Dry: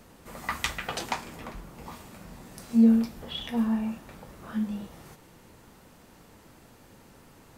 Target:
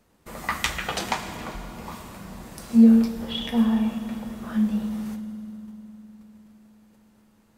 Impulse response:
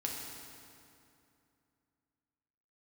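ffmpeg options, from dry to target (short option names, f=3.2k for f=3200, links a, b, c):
-filter_complex "[0:a]agate=range=-15dB:threshold=-50dB:ratio=16:detection=peak,asplit=2[a][b];[1:a]atrim=start_sample=2205,asetrate=32634,aresample=44100[c];[b][c]afir=irnorm=-1:irlink=0,volume=-7dB[d];[a][d]amix=inputs=2:normalize=0,volume=1dB"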